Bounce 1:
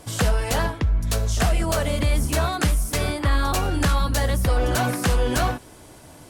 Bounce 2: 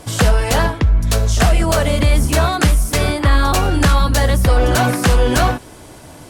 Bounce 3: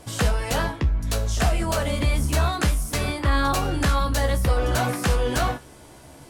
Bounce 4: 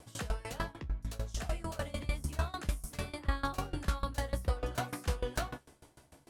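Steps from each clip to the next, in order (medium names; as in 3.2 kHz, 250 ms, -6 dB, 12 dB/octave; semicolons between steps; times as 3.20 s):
treble shelf 8.7 kHz -3.5 dB; trim +7.5 dB
feedback comb 69 Hz, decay 0.17 s, harmonics all, mix 80%; trim -3.5 dB
sawtooth tremolo in dB decaying 6.7 Hz, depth 22 dB; trim -7 dB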